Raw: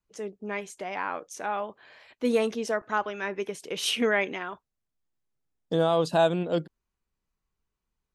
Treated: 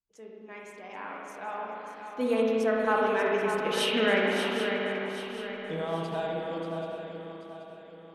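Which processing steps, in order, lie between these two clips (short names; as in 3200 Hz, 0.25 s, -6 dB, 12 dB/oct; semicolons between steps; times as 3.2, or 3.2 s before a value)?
Doppler pass-by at 3.35, 7 m/s, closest 5 m; dynamic EQ 6300 Hz, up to -6 dB, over -58 dBFS, Q 1.3; swung echo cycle 0.782 s, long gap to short 3:1, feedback 40%, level -7.5 dB; spring tank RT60 2.2 s, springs 36/54 ms, chirp 35 ms, DRR -2 dB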